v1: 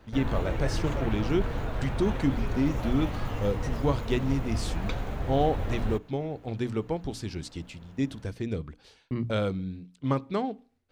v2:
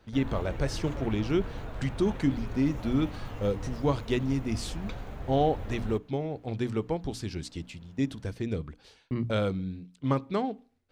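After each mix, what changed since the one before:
background -7.0 dB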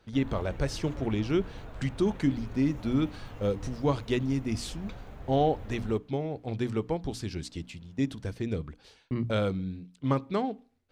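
background -5.0 dB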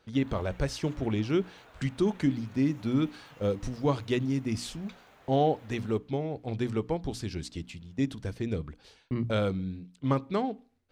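background: add high-pass 1.3 kHz 6 dB/octave

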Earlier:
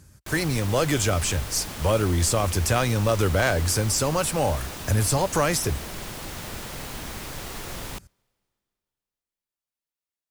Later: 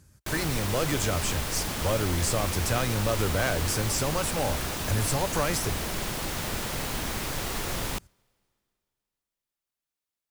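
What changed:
speech -5.5 dB; background +4.0 dB

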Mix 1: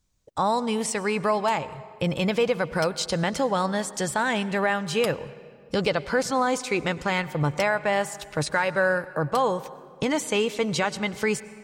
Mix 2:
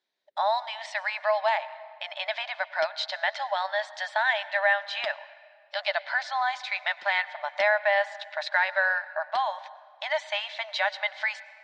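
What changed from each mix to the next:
speech: add brick-wall FIR high-pass 580 Hz; master: add cabinet simulation 380–4100 Hz, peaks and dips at 380 Hz +5 dB, 540 Hz +4 dB, 1.2 kHz -9 dB, 1.8 kHz +7 dB, 2.7 kHz -4 dB, 3.8 kHz +5 dB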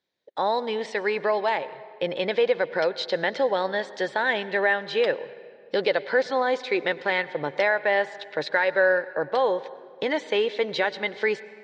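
speech: remove brick-wall FIR high-pass 580 Hz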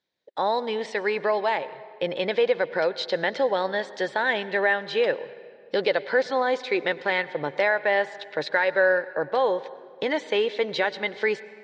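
background -6.0 dB

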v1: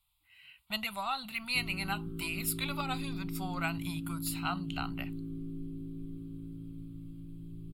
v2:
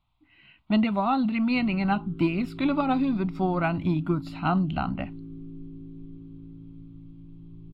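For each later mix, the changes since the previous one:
speech: remove amplifier tone stack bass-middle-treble 10-0-10; master: add distance through air 200 m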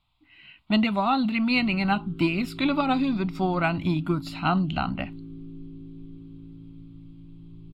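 master: add treble shelf 2.5 kHz +11.5 dB

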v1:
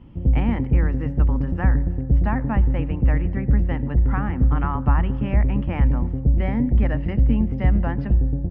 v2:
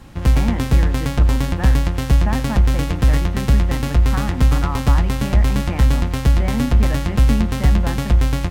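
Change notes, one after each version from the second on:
background: remove Gaussian low-pass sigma 19 samples; master: add bass shelf 130 Hz +4.5 dB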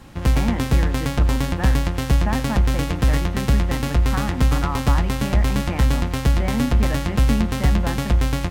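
master: add bass shelf 130 Hz -4.5 dB

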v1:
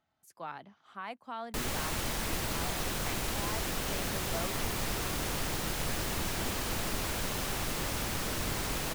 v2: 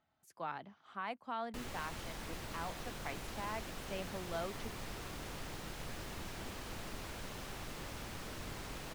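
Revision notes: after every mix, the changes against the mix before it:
background -10.5 dB; master: add treble shelf 6.9 kHz -8 dB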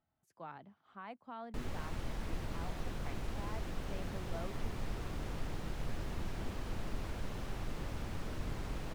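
speech -7.0 dB; master: add tilt EQ -2 dB/octave

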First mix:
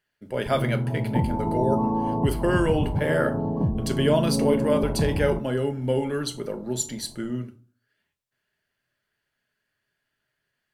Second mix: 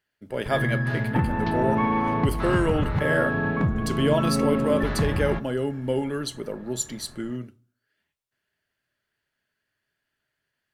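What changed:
speech: send -8.5 dB; background: remove Chebyshev low-pass 1 kHz, order 6

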